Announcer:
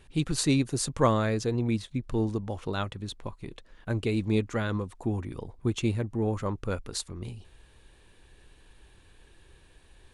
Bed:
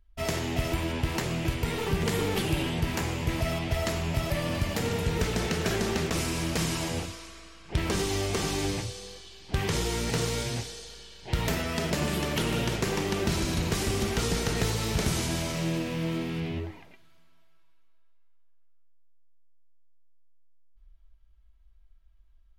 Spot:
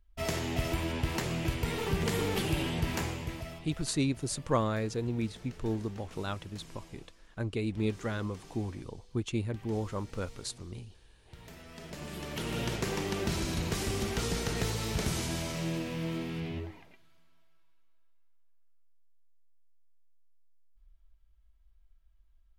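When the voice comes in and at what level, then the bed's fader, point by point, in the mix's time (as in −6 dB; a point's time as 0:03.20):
3.50 s, −5.0 dB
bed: 0:03.02 −3 dB
0:03.91 −23.5 dB
0:11.39 −23.5 dB
0:12.66 −4.5 dB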